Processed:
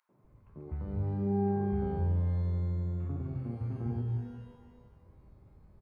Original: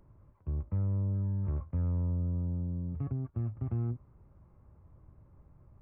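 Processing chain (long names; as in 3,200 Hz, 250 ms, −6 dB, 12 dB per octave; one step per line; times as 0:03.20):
three-band delay without the direct sound highs, mids, lows 90/240 ms, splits 150/1,200 Hz
reverb with rising layers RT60 1.3 s, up +12 semitones, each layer −8 dB, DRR 5 dB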